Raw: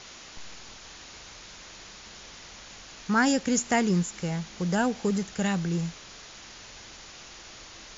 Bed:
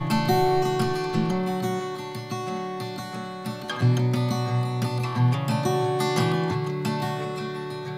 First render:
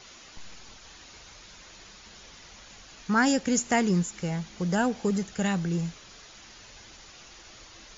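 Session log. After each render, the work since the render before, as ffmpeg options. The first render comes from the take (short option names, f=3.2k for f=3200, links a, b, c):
-af "afftdn=nr=6:nf=-47"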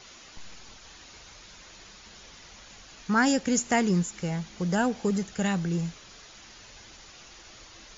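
-af anull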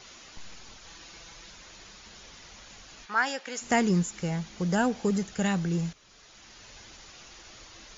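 -filter_complex "[0:a]asettb=1/sr,asplit=3[a][b][c];[a]atrim=end=0.864[d];[b]atrim=start=0.86:end=1.5,asetpts=PTS-STARTPTS,afade=t=in:d=0.004:c=qsin,afade=t=out:st=0.636:d=0.004:c=qsin,aecho=1:1:6:0.52,atrim=end_sample=28224[e];[c]atrim=start=1.496[f];[d][e]acrossfade=d=0.004:c1=hsin:c2=qsin[g];[g][f]acrossfade=d=0.004:c1=qsin:c2=hsin,asplit=3[h][i][j];[h]afade=t=out:st=3.05:d=0.02[k];[i]highpass=750,lowpass=4.2k,afade=t=in:st=3.05:d=0.02,afade=t=out:st=3.61:d=0.02[l];[j]afade=t=in:st=3.61:d=0.02[m];[k][l][m]amix=inputs=3:normalize=0,asplit=2[n][o];[n]atrim=end=5.93,asetpts=PTS-STARTPTS,afade=t=out:st=5.926:d=0.004:c=hsin:silence=0.251189[p];[o]atrim=start=5.93,asetpts=PTS-STARTPTS,afade=t=in:d=0.8:silence=0.251189[q];[p][q]concat=n=2:v=0:a=1"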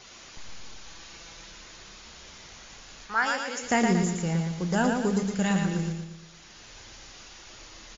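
-filter_complex "[0:a]asplit=2[a][b];[b]adelay=31,volume=-12dB[c];[a][c]amix=inputs=2:normalize=0,asplit=2[d][e];[e]aecho=0:1:116|232|348|464|580|696:0.596|0.268|0.121|0.0543|0.0244|0.011[f];[d][f]amix=inputs=2:normalize=0"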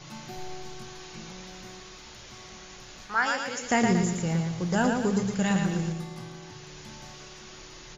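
-filter_complex "[1:a]volume=-20.5dB[a];[0:a][a]amix=inputs=2:normalize=0"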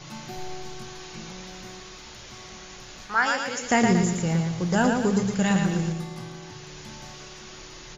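-af "volume=3dB"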